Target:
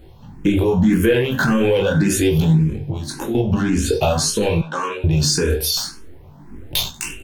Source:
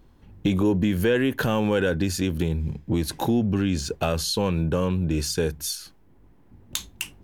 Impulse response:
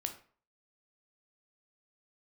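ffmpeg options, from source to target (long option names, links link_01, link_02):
-filter_complex "[1:a]atrim=start_sample=2205,asetrate=48510,aresample=44100[link_01];[0:a][link_01]afir=irnorm=-1:irlink=0,asoftclip=type=tanh:threshold=-13.5dB,asettb=1/sr,asplit=3[link_02][link_03][link_04];[link_02]atrim=end=2.864[link_05];[link_03]atrim=start=2.86:end=3.35,asetpts=PTS-STARTPTS,afade=type=in:duration=0.004:curve=qsin,afade=type=out:start_time=0.486:duration=0.004:curve=qsin,acompressor=threshold=-33dB:ratio=10[link_06];[link_04]atrim=start=3.346[link_07];[link_05][link_06]acrossfade=duration=0.004:curve1=hsin:curve2=qsin[link_08];[link_08][link_07]acrossfade=duration=0.004:curve1=qsin:curve2=hsin,aecho=1:1:95|190:0.1|0.026,flanger=delay=18.5:depth=4.7:speed=0.43,asettb=1/sr,asplit=3[link_09][link_10][link_11];[link_09]atrim=end=4.614[link_12];[link_10]atrim=start=4.61:end=5.04,asetpts=PTS-STARTPTS,afade=type=in:duration=0.004:curve=qsin,afade=type=out:start_time=0.426:duration=0.004:curve=qsin,highpass=660,lowpass=7700[link_13];[link_11]atrim=start=5.036[link_14];[link_12][link_13]acrossfade=duration=0.004:curve1=hsin:curve2=qsin[link_15];[link_15][link_14]acrossfade=duration=0.004:curve1=qsin:curve2=hsin,asettb=1/sr,asplit=3[link_16][link_17][link_18];[link_16]atrim=end=5.774[link_19];[link_17]atrim=start=5.77:end=6.92,asetpts=PTS-STARTPTS,afade=type=in:duration=0.004:curve=qsin,afade=type=out:start_time=1.146:duration=0.004:curve=qsin,aeval=exprs='0.0708*(cos(1*acos(clip(val(0)/0.0708,-1,1)))-cos(1*PI/2))+0.00708*(cos(5*acos(clip(val(0)/0.0708,-1,1)))-cos(5*PI/2))+0.0112*(cos(8*acos(clip(val(0)/0.0708,-1,1)))-cos(8*PI/2))':channel_layout=same[link_20];[link_18]atrim=start=6.916[link_21];[link_19][link_20]acrossfade=duration=0.004:curve1=hsin:curve2=qsin[link_22];[link_22][link_21]acrossfade=duration=0.004:curve1=qsin:curve2=hsin,alimiter=level_in=24dB:limit=-1dB:release=50:level=0:latency=1,asplit=2[link_23][link_24];[link_24]afreqshift=1.8[link_25];[link_23][link_25]amix=inputs=2:normalize=1,volume=-5.5dB"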